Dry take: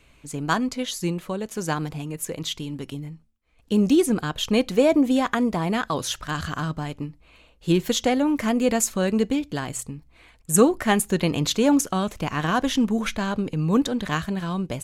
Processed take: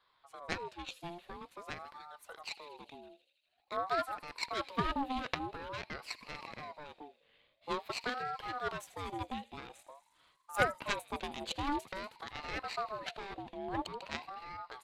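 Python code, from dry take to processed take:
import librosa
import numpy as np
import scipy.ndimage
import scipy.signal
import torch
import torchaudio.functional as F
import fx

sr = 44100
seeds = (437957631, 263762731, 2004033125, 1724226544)

p1 = fx.high_shelf_res(x, sr, hz=4300.0, db=-8.5, q=3.0)
p2 = p1 + fx.echo_wet_highpass(p1, sr, ms=80, feedback_pct=78, hz=3600.0, wet_db=-13.0, dry=0)
p3 = fx.cheby_harmonics(p2, sr, harmonics=(3, 4), levels_db=(-13, -19), full_scale_db=-3.5)
p4 = fx.ring_lfo(p3, sr, carrier_hz=780.0, swing_pct=35, hz=0.48)
y = F.gain(torch.from_numpy(p4), -6.0).numpy()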